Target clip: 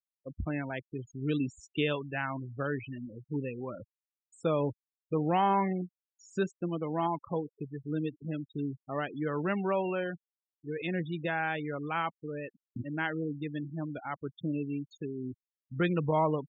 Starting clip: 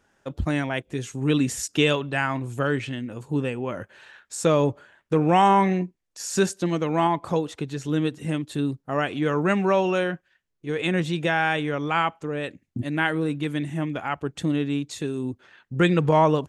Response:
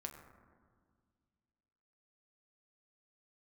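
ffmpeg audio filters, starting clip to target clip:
-filter_complex "[0:a]afftfilt=real='re*gte(hypot(re,im),0.0562)':imag='im*gte(hypot(re,im),0.0562)':win_size=1024:overlap=0.75,acrossover=split=4100[link_01][link_02];[link_02]acompressor=threshold=-50dB:ratio=4:attack=1:release=60[link_03];[link_01][link_03]amix=inputs=2:normalize=0,volume=-9dB"

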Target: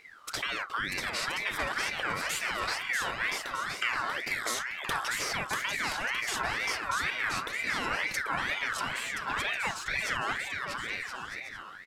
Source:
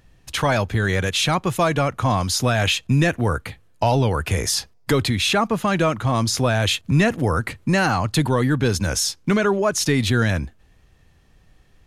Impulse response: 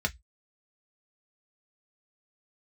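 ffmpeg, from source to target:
-filter_complex "[0:a]acompressor=threshold=-36dB:ratio=3,asettb=1/sr,asplit=3[link_01][link_02][link_03];[link_01]atrim=end=8.794[link_04];[link_02]atrim=start=8.79:end=9.91,asetpts=PTS-STARTPTS,afade=type=in:duration=0.004:curve=qsin,afade=type=out:start_time=1.116:duration=0.004:curve=qsin,asplit=2[link_05][link_06];[link_06]highpass=frequency=720:poles=1,volume=12dB,asoftclip=type=tanh:threshold=-23dB[link_07];[link_05][link_07]amix=inputs=2:normalize=0,lowpass=frequency=1500:poles=1,volume=-6dB[link_08];[link_03]atrim=start=9.906[link_09];[link_04][link_08]acrossfade=duration=0.004:curve1=hsin:curve2=qsin[link_10];[link_10][link_09]acrossfade=duration=0.004:curve1=qsin:curve2=hsin,aecho=1:1:640|1024|1254|1393|1476:0.631|0.398|0.251|0.158|0.1,asplit=2[link_11][link_12];[1:a]atrim=start_sample=2205,adelay=31[link_13];[link_12][link_13]afir=irnorm=-1:irlink=0,volume=-22dB[link_14];[link_11][link_14]amix=inputs=2:normalize=0,aeval=exprs='val(0)*sin(2*PI*1700*n/s+1700*0.3/2.1*sin(2*PI*2.1*n/s))':channel_layout=same,volume=2.5dB"

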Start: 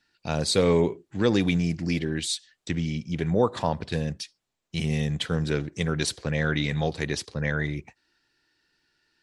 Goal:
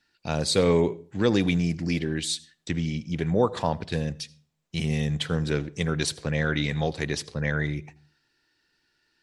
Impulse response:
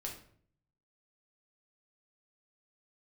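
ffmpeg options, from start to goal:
-filter_complex "[0:a]asplit=2[link_01][link_02];[1:a]atrim=start_sample=2205,asetrate=61740,aresample=44100,adelay=80[link_03];[link_02][link_03]afir=irnorm=-1:irlink=0,volume=-18.5dB[link_04];[link_01][link_04]amix=inputs=2:normalize=0"

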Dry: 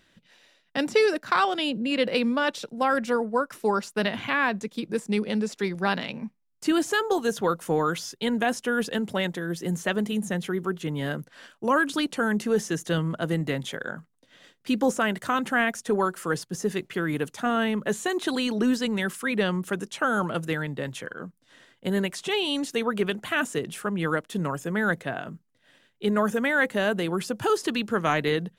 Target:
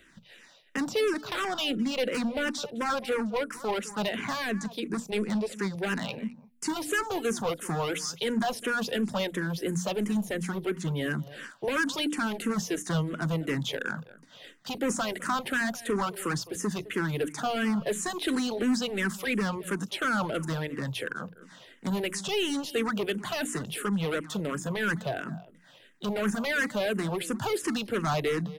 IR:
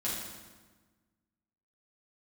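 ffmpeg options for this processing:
-filter_complex "[0:a]bandreject=frequency=60:width_type=h:width=6,bandreject=frequency=120:width_type=h:width=6,bandreject=frequency=180:width_type=h:width=6,bandreject=frequency=240:width_type=h:width=6,bandreject=frequency=300:width_type=h:width=6,acrossover=split=160|6600[link_01][link_02][link_03];[link_02]volume=26dB,asoftclip=hard,volume=-26dB[link_04];[link_03]asplit=2[link_05][link_06];[link_06]adelay=41,volume=-11dB[link_07];[link_05][link_07]amix=inputs=2:normalize=0[link_08];[link_01][link_04][link_08]amix=inputs=3:normalize=0,asplit=2[link_09][link_10];[link_10]adelay=209.9,volume=-19dB,highshelf=frequency=4000:gain=-4.72[link_11];[link_09][link_11]amix=inputs=2:normalize=0,asplit=2[link_12][link_13];[link_13]acompressor=threshold=-38dB:ratio=6,volume=2dB[link_14];[link_12][link_14]amix=inputs=2:normalize=0,asplit=2[link_15][link_16];[link_16]afreqshift=-2.9[link_17];[link_15][link_17]amix=inputs=2:normalize=1"

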